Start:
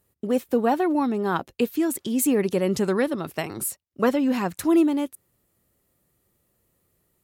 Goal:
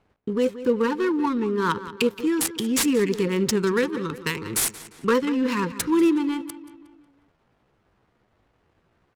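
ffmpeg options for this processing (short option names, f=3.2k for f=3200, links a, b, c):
-filter_complex "[0:a]equalizer=f=270:t=o:w=0.78:g=-3.5,asplit=2[a][b];[b]acompressor=threshold=-34dB:ratio=8,volume=0dB[c];[a][c]amix=inputs=2:normalize=0,crystalizer=i=3:c=0,aeval=exprs='0.316*(abs(mod(val(0)/0.316+3,4)-2)-1)':c=same,asuperstop=centerf=680:order=20:qfactor=2,acrusher=bits=7:mix=0:aa=0.000001,adynamicsmooth=sensitivity=3:basefreq=1.2k,asplit=2[d][e];[e]adelay=141,lowpass=f=4.9k:p=1,volume=-14dB,asplit=2[f][g];[g]adelay=141,lowpass=f=4.9k:p=1,volume=0.5,asplit=2[h][i];[i]adelay=141,lowpass=f=4.9k:p=1,volume=0.5,asplit=2[j][k];[k]adelay=141,lowpass=f=4.9k:p=1,volume=0.5,asplit=2[l][m];[m]adelay=141,lowpass=f=4.9k:p=1,volume=0.5[n];[d][f][h][j][l][n]amix=inputs=6:normalize=0,atempo=0.79"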